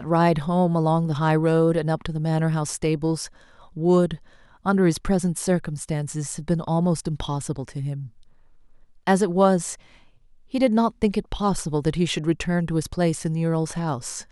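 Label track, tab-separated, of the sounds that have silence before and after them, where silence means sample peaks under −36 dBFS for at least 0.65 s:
9.070000	9.750000	sound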